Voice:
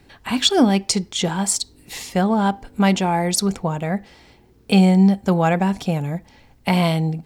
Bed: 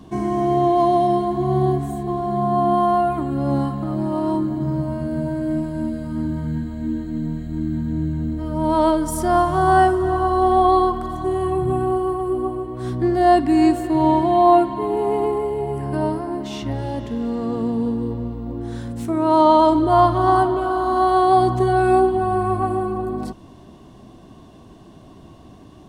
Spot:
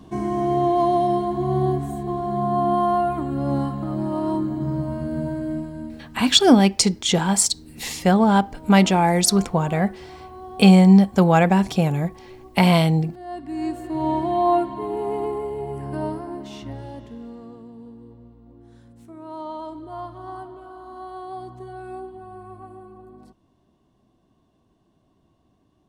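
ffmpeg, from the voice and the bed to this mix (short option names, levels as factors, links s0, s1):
-filter_complex "[0:a]adelay=5900,volume=1.26[s0];[1:a]volume=5.01,afade=t=out:st=5.27:d=0.94:silence=0.105925,afade=t=in:st=13.27:d=0.95:silence=0.149624,afade=t=out:st=16.12:d=1.52:silence=0.188365[s1];[s0][s1]amix=inputs=2:normalize=0"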